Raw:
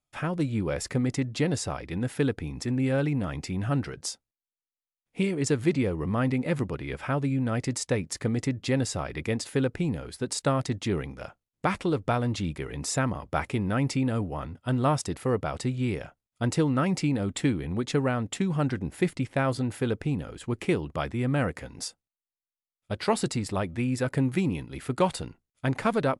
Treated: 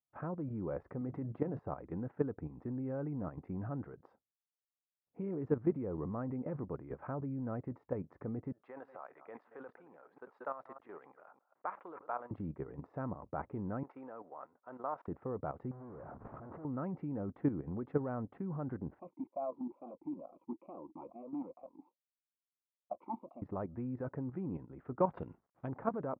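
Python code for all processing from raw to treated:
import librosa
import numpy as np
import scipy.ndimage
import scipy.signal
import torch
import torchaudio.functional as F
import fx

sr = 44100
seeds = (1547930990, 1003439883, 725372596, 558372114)

y = fx.chain(x, sr, fx.highpass(hz=67.0, slope=12),
    fx.hum_notches(base_hz=50, count=4),
    fx.transient(attack_db=1, sustain_db=6), at=(1.01, 1.59))
y = fx.chain(y, sr, fx.reverse_delay(ms=151, wet_db=-12.0),
    fx.highpass(hz=920.0, slope=12),
    fx.sustainer(db_per_s=120.0), at=(8.52, 12.31))
y = fx.chain(y, sr, fx.cvsd(bps=64000),
    fx.highpass(hz=660.0, slope=12), at=(13.83, 15.08))
y = fx.chain(y, sr, fx.clip_1bit(),
    fx.lowpass(hz=1600.0, slope=12),
    fx.over_compress(threshold_db=-37.0, ratio=-1.0), at=(15.71, 16.65))
y = fx.chain(y, sr, fx.leveller(passes=3),
    fx.fixed_phaser(hz=430.0, stages=6),
    fx.vowel_sweep(vowels='a-u', hz=2.3), at=(18.99, 23.42))
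y = fx.chain(y, sr, fx.law_mismatch(coded='mu'),
    fx.high_shelf_res(hz=2000.0, db=11.5, q=1.5),
    fx.resample_linear(factor=4), at=(25.17, 25.68))
y = scipy.signal.sosfilt(scipy.signal.butter(4, 1200.0, 'lowpass', fs=sr, output='sos'), y)
y = fx.level_steps(y, sr, step_db=11)
y = fx.highpass(y, sr, hz=140.0, slope=6)
y = y * 10.0 ** (-3.5 / 20.0)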